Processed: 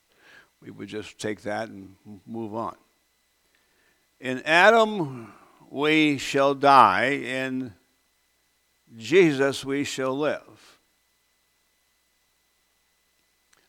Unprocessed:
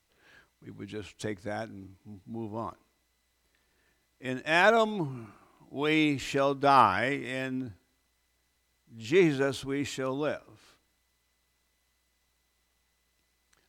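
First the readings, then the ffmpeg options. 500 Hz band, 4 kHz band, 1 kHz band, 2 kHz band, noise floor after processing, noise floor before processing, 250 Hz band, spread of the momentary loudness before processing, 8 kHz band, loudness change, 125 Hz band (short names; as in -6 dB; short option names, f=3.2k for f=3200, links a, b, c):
+6.0 dB, +6.5 dB, +6.5 dB, +6.5 dB, -69 dBFS, -74 dBFS, +5.0 dB, 19 LU, +6.5 dB, +6.0 dB, +1.5 dB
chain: -af "equalizer=f=61:w=0.55:g=-10,volume=6.5dB"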